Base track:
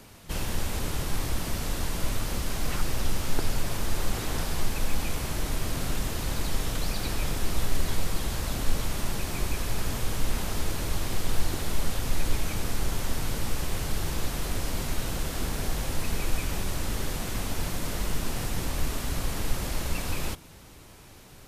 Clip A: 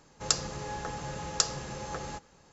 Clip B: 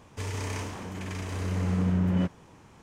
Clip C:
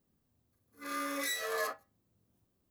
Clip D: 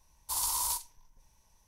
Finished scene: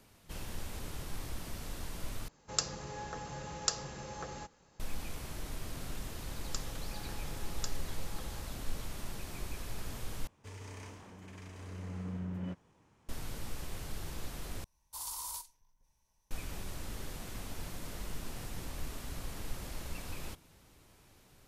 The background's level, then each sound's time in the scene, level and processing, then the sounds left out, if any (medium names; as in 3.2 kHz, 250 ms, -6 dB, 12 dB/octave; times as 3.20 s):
base track -12 dB
2.28 s: replace with A -5.5 dB
6.24 s: add A -15.5 dB
10.27 s: replace with B -14 dB
14.64 s: replace with D -10 dB
not used: C